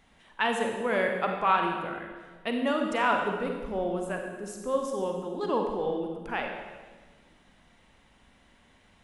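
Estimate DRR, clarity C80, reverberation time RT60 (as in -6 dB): 2.5 dB, 5.5 dB, 1.4 s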